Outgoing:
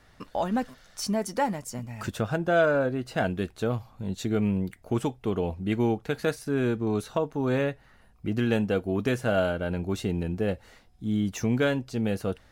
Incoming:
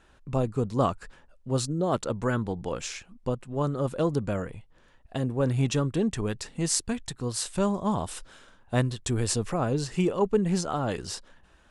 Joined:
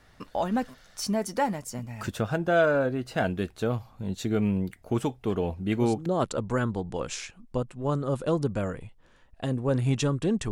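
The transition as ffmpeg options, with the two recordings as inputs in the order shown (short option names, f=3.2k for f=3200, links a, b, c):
-filter_complex "[1:a]asplit=2[a][b];[0:a]apad=whole_dur=10.51,atrim=end=10.51,atrim=end=6.062[c];[b]atrim=start=1.778:end=6.23[d];[a]atrim=start=0.98:end=1.78,asetpts=PTS-STARTPTS,volume=-11dB,afade=t=in:d=0.004:c=hsin,afade=t=out:st=0.796:d=0.004:c=hsin,adelay=5260[e];[c][d]acrossfade=d=0.004:c1=hsin:c2=hsin[f];[f][e]amix=inputs=2:normalize=0"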